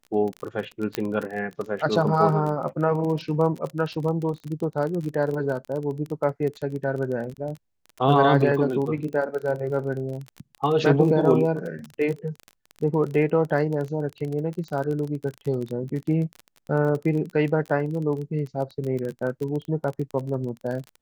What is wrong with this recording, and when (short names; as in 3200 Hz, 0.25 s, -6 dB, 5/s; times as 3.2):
crackle 28/s -29 dBFS
0.95 pop -10 dBFS